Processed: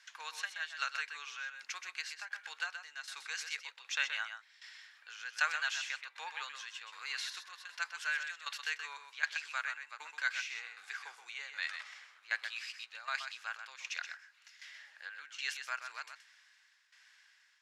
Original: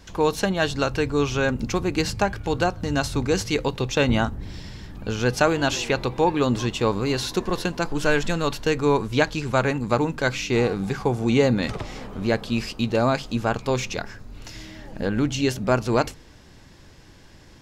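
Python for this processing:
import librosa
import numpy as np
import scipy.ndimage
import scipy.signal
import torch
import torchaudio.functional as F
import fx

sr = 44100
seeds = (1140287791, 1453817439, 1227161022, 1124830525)

y = scipy.signal.sosfilt(scipy.signal.butter(2, 10000.0, 'lowpass', fs=sr, output='sos'), x)
y = fx.tremolo_shape(y, sr, shape='saw_down', hz=1.3, depth_pct=80)
y = fx.ladder_highpass(y, sr, hz=1400.0, resonance_pct=45)
y = y + 10.0 ** (-8.0 / 20.0) * np.pad(y, (int(126 * sr / 1000.0), 0))[:len(y)]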